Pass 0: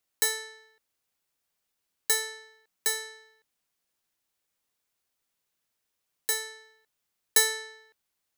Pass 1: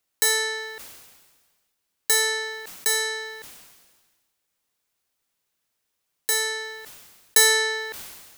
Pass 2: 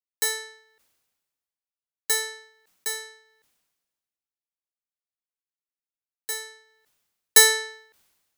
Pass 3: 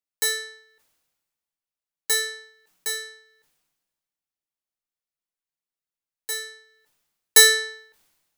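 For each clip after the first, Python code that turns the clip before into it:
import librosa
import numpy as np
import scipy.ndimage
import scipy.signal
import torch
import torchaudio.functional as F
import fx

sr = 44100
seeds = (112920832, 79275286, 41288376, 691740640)

y1 = fx.sustainer(x, sr, db_per_s=39.0)
y1 = F.gain(torch.from_numpy(y1), 3.5).numpy()
y2 = fx.upward_expand(y1, sr, threshold_db=-34.0, expansion=2.5)
y2 = F.gain(torch.from_numpy(y2), 4.5).numpy()
y3 = fx.room_shoebox(y2, sr, seeds[0], volume_m3=120.0, walls='furnished', distance_m=0.58)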